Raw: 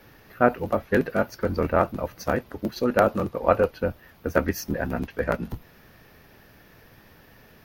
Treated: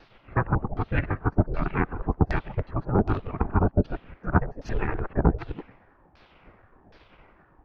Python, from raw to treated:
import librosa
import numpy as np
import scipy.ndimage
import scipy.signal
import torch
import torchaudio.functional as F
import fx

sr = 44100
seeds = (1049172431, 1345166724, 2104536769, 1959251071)

y = fx.local_reverse(x, sr, ms=92.0)
y = fx.filter_lfo_lowpass(y, sr, shape='saw_down', hz=1.3, low_hz=500.0, high_hz=4900.0, q=2.7)
y = fx.spec_gate(y, sr, threshold_db=-10, keep='weak')
y = fx.rider(y, sr, range_db=4, speed_s=0.5)
y = fx.riaa(y, sr, side='playback')